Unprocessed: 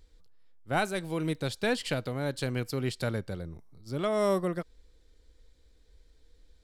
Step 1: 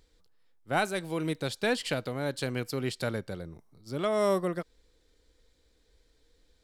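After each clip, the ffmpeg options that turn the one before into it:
-af "lowshelf=f=100:g=-10.5,volume=1dB"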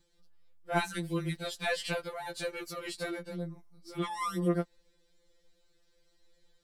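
-af "afftfilt=real='re*2.83*eq(mod(b,8),0)':imag='im*2.83*eq(mod(b,8),0)':win_size=2048:overlap=0.75"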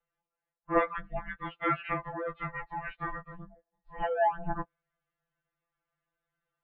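-af "equalizer=f=500:t=o:w=1:g=-8,equalizer=f=1k:t=o:w=1:g=11,equalizer=f=2k:t=o:w=1:g=4,highpass=f=260:t=q:w=0.5412,highpass=f=260:t=q:w=1.307,lowpass=f=2.9k:t=q:w=0.5176,lowpass=f=2.9k:t=q:w=0.7071,lowpass=f=2.9k:t=q:w=1.932,afreqshift=-360,afftdn=nr=12:nf=-46"

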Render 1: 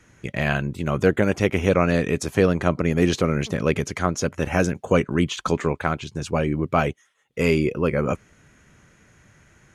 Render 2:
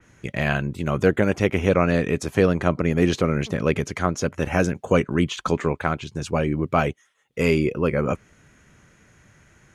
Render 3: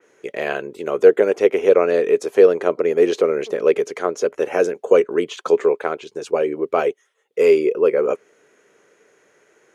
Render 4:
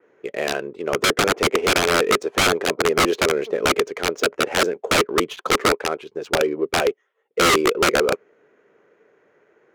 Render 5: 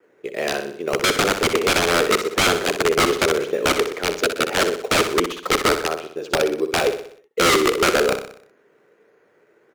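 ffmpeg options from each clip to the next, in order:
-af "adynamicequalizer=threshold=0.0126:dfrequency=3600:dqfactor=0.7:tfrequency=3600:tqfactor=0.7:attack=5:release=100:ratio=0.375:range=2:mode=cutabove:tftype=highshelf"
-af "highpass=f=430:t=q:w=4.9,volume=-2.5dB"
-af "aeval=exprs='(mod(3.35*val(0)+1,2)-1)/3.35':c=same,adynamicsmooth=sensitivity=7:basefreq=2.1k"
-filter_complex "[0:a]acrossover=split=670|1000[a][b][c];[b]acrusher=samples=11:mix=1:aa=0.000001:lfo=1:lforange=6.6:lforate=1.5[d];[a][d][c]amix=inputs=3:normalize=0,aecho=1:1:62|124|186|248|310|372:0.355|0.174|0.0852|0.0417|0.0205|0.01"

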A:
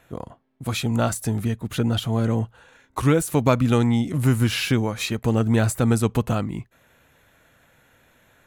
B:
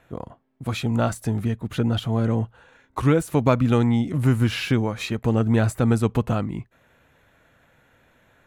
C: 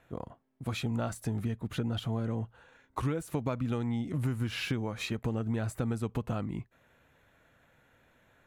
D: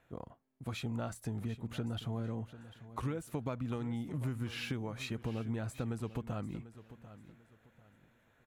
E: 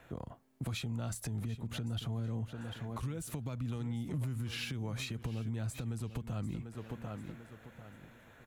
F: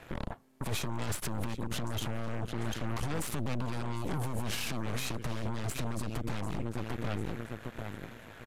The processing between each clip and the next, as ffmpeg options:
-af "highshelf=f=4.6k:g=-10"
-af "acompressor=threshold=-22dB:ratio=6,volume=-6dB"
-af "aecho=1:1:744|1488|2232:0.178|0.0516|0.015,volume=-5.5dB"
-filter_complex "[0:a]acrossover=split=180|3000[a][b][c];[b]acompressor=threshold=-49dB:ratio=3[d];[a][d][c]amix=inputs=3:normalize=0,alimiter=level_in=16.5dB:limit=-24dB:level=0:latency=1:release=295,volume=-16.5dB,volume=11dB"
-af "aeval=exprs='0.0355*(cos(1*acos(clip(val(0)/0.0355,-1,1)))-cos(1*PI/2))+0.0126*(cos(8*acos(clip(val(0)/0.0355,-1,1)))-cos(8*PI/2))':c=same,alimiter=level_in=8dB:limit=-24dB:level=0:latency=1:release=100,volume=-8dB,aresample=32000,aresample=44100,volume=7dB"

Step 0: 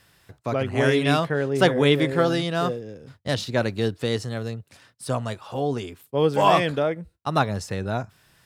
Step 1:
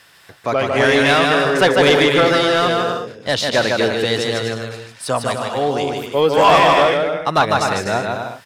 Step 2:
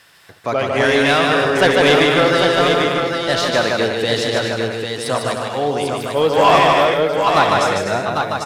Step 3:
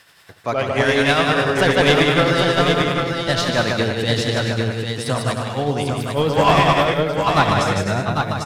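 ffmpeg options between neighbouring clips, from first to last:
-filter_complex "[0:a]aecho=1:1:150|247.5|310.9|352.1|378.8:0.631|0.398|0.251|0.158|0.1,asplit=2[a][b];[b]highpass=f=720:p=1,volume=17dB,asoftclip=type=tanh:threshold=-2dB[c];[a][c]amix=inputs=2:normalize=0,lowpass=f=6.7k:p=1,volume=-6dB"
-af "aecho=1:1:69|797:0.224|0.562,volume=-1dB"
-af "asubboost=boost=3.5:cutoff=220,tremolo=f=10:d=0.41"

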